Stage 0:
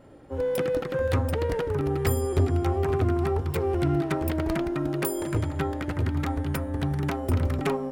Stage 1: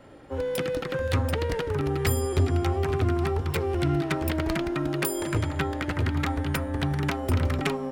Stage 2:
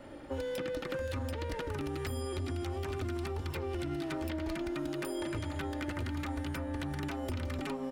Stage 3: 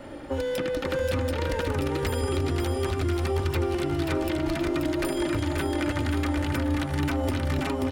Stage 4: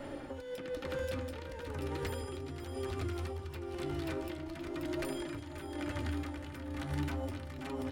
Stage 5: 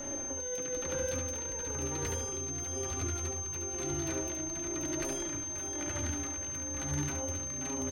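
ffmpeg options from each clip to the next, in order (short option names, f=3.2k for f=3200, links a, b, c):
-filter_complex "[0:a]acrossover=split=310|3000[a][b][c];[b]acompressor=threshold=-31dB:ratio=6[d];[a][d][c]amix=inputs=3:normalize=0,equalizer=f=2.7k:w=0.36:g=7"
-filter_complex "[0:a]alimiter=limit=-19.5dB:level=0:latency=1:release=14,aecho=1:1:3.4:0.41,acrossover=split=2500|6100[a][b][c];[a]acompressor=threshold=-35dB:ratio=4[d];[b]acompressor=threshold=-50dB:ratio=4[e];[c]acompressor=threshold=-56dB:ratio=4[f];[d][e][f]amix=inputs=3:normalize=0"
-af "aecho=1:1:533|1066|1599|2132:0.631|0.221|0.0773|0.0271,volume=8dB"
-af "alimiter=level_in=1.5dB:limit=-24dB:level=0:latency=1:release=270,volume=-1.5dB,tremolo=f=1:d=0.57,flanger=delay=7:depth=8.6:regen=67:speed=0.38:shape=sinusoidal,volume=2dB"
-af "aeval=exprs='val(0)+0.01*sin(2*PI*6300*n/s)':c=same,aecho=1:1:70:0.501"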